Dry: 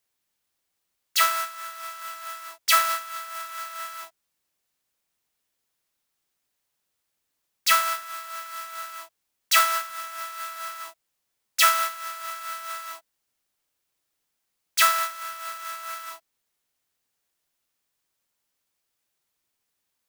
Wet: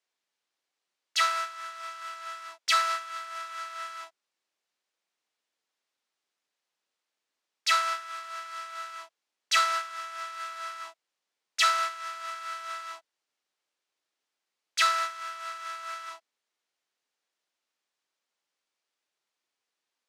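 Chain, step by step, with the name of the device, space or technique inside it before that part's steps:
public-address speaker with an overloaded transformer (saturating transformer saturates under 4,000 Hz; band-pass filter 310–5,900 Hz)
level −2 dB

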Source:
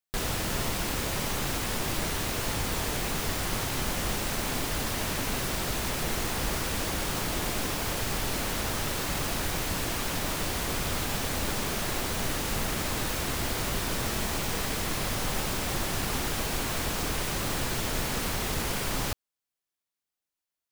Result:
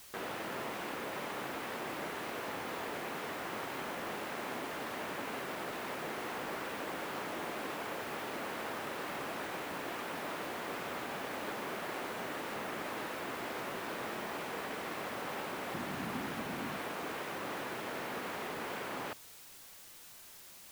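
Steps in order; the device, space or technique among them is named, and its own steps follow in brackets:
wax cylinder (band-pass filter 300–2,200 Hz; tape wow and flutter; white noise bed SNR 13 dB)
0:15.74–0:16.78: low shelf with overshoot 300 Hz +7 dB, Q 1.5
level −4.5 dB

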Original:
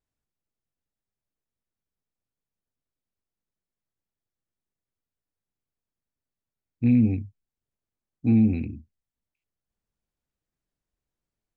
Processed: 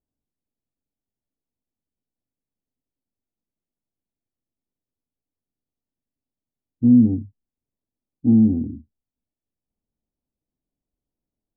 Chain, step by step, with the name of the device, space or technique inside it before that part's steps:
under water (low-pass filter 880 Hz 24 dB per octave; parametric band 260 Hz +8 dB 0.58 octaves)

